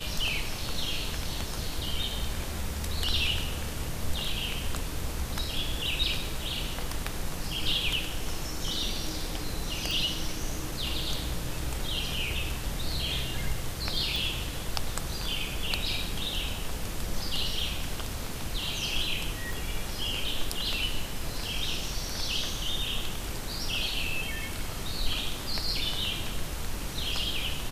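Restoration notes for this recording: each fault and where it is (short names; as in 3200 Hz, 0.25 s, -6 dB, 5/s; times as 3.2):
9.91 pop
14.16 pop
19.53 pop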